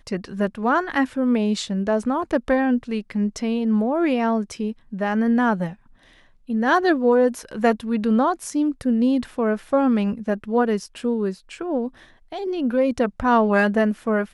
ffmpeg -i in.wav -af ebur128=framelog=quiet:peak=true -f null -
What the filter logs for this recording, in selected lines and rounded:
Integrated loudness:
  I:         -21.8 LUFS
  Threshold: -32.0 LUFS
Loudness range:
  LRA:         3.0 LU
  Threshold: -42.2 LUFS
  LRA low:   -23.8 LUFS
  LRA high:  -20.8 LUFS
True peak:
  Peak:       -3.6 dBFS